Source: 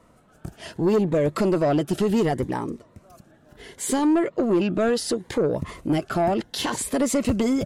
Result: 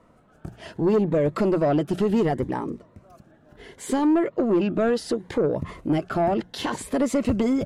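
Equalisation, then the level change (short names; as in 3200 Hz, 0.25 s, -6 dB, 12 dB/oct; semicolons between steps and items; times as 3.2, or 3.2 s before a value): high shelf 4100 Hz -11 dB; notches 60/120/180 Hz; 0.0 dB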